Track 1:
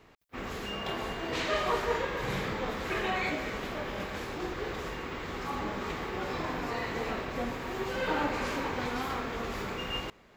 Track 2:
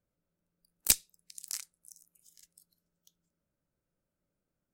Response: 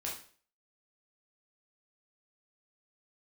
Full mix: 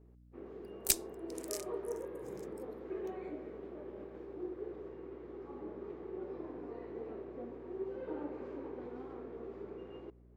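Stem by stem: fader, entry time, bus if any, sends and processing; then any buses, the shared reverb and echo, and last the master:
-2.5 dB, 0.00 s, no send, band-pass 370 Hz, Q 3.4; hum 60 Hz, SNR 16 dB
-5.0 dB, 0.00 s, no send, dry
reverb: off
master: dry

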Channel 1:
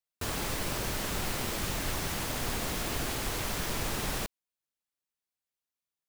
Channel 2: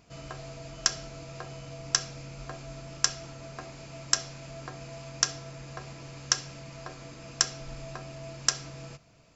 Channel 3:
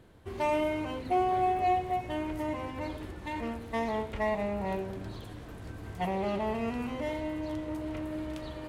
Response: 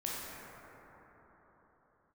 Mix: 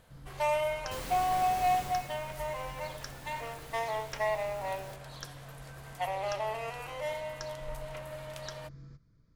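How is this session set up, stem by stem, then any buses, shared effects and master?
1.78 s -8 dB -> 2.19 s -19 dB, 0.70 s, no send, dry
-12.5 dB, 0.00 s, no send, tilt -3 dB/oct; upward compressor, threshold -47 dBFS; fixed phaser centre 2700 Hz, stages 6
0.0 dB, 0.00 s, no send, steep high-pass 490 Hz 48 dB/oct; high shelf 6200 Hz +8.5 dB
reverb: off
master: dry

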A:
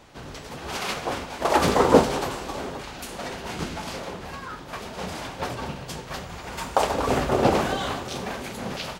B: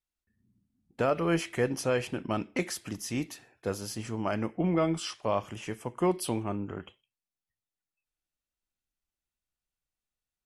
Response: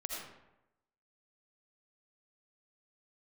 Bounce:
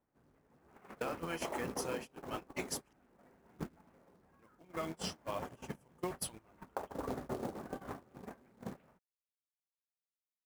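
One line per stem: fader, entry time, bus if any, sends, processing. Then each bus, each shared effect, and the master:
-5.5 dB, 0.00 s, no send, LPF 2000 Hz 24 dB/oct; bell 240 Hz +6.5 dB 1.8 oct; compressor 10:1, threshold -23 dBFS, peak gain reduction 18 dB
+0.5 dB, 0.00 s, muted 2.93–4.39, no send, tilt +2.5 dB/oct; flange 1.1 Hz, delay 0.2 ms, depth 8 ms, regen +46%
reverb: off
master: gate -31 dBFS, range -28 dB; short-mantissa float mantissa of 2-bit; compressor 5:1, threshold -36 dBFS, peak gain reduction 12 dB

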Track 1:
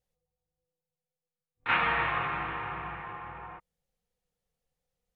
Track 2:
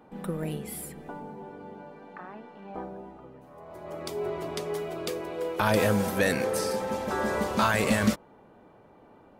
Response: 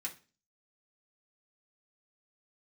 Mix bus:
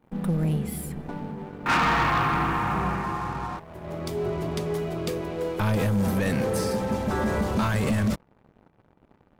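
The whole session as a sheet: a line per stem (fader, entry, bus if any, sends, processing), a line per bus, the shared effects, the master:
+3.0 dB, 0.00 s, no send, graphic EQ 250/500/2000/4000 Hz +8/-8/-7/-11 dB
-10.0 dB, 0.00 s, no send, tone controls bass +13 dB, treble -1 dB; limiter -14 dBFS, peak gain reduction 10 dB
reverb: off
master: sample leveller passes 3

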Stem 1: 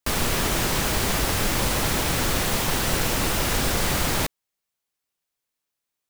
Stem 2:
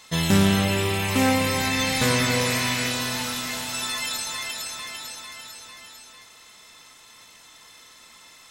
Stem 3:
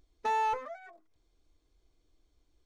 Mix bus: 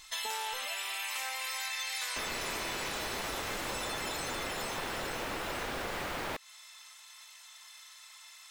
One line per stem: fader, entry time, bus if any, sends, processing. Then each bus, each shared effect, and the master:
-1.0 dB, 2.10 s, no send, tone controls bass -12 dB, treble -13 dB
-7.0 dB, 0.00 s, no send, HPF 710 Hz 24 dB/oct; tilt shelf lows -4.5 dB
-2.5 dB, 0.00 s, no send, dry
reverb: off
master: compressor 6:1, threshold -34 dBFS, peak gain reduction 10.5 dB

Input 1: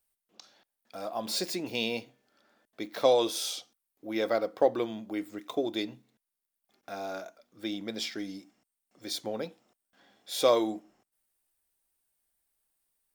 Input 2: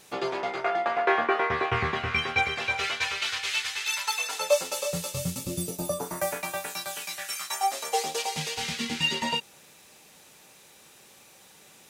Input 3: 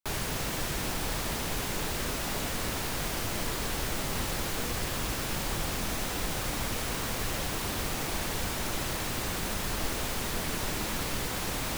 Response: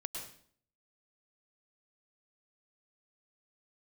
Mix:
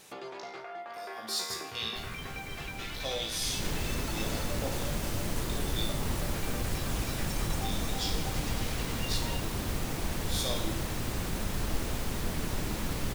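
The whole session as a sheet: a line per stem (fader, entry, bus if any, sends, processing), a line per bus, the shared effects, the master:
-5.5 dB, 0.00 s, no send, band shelf 6300 Hz +15.5 dB 2.6 oct; resonator 55 Hz, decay 0.62 s, harmonics all, mix 90%
-0.5 dB, 0.00 s, no send, compressor 5:1, threshold -39 dBFS, peak gain reduction 19.5 dB; limiter -32 dBFS, peak gain reduction 8 dB
3.36 s -15.5 dB -> 3.64 s -5.5 dB, 1.90 s, no send, low shelf 370 Hz +9 dB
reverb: off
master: dry

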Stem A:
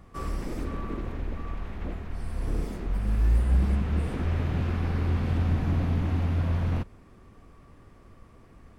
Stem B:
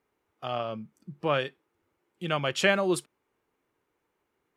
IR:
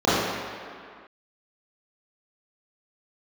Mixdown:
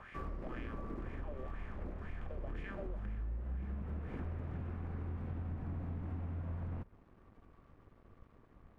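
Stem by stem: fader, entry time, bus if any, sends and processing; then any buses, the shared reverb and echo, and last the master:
-5.5 dB, 0.00 s, no send, LPF 1700 Hz 12 dB/oct; crossover distortion -57 dBFS
-17.0 dB, 0.00 s, no send, per-bin compression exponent 0.2; wah 2 Hz 420–2100 Hz, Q 4.1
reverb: off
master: compressor 6:1, threshold -38 dBFS, peak gain reduction 14 dB

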